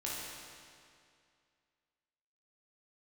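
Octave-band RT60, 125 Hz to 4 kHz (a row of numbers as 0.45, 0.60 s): 2.3, 2.3, 2.3, 2.3, 2.2, 2.0 s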